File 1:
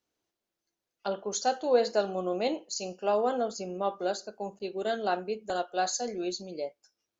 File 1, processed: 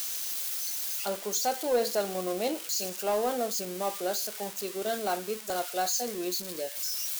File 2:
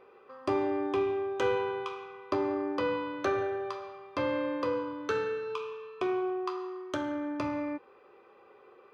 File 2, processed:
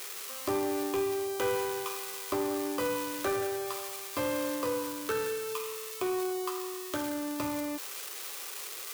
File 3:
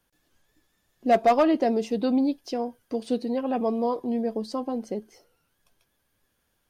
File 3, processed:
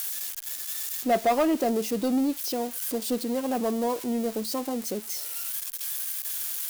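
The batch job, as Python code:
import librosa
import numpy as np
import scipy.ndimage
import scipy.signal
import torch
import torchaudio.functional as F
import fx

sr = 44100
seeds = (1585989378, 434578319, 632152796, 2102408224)

y = x + 0.5 * 10.0 ** (-24.5 / 20.0) * np.diff(np.sign(x), prepend=np.sign(x[:1]))
y = fx.leveller(y, sr, passes=1)
y = F.gain(torch.from_numpy(y), -4.5).numpy()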